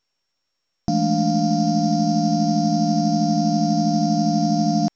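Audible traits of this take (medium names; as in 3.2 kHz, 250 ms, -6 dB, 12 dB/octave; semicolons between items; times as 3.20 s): a buzz of ramps at a fixed pitch in blocks of 8 samples; µ-law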